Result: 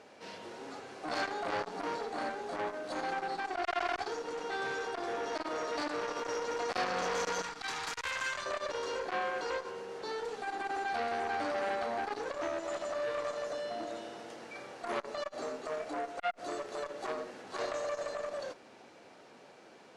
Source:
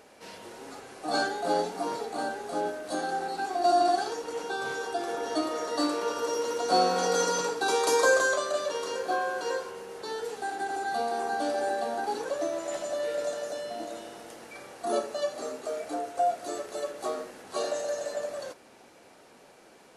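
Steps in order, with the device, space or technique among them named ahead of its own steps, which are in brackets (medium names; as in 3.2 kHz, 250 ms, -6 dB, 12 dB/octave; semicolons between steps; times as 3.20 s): valve radio (band-pass 82–5700 Hz; valve stage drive 22 dB, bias 0.3; transformer saturation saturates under 1.6 kHz); 7.42–8.46 s: peaking EQ 460 Hz -15 dB 1.3 oct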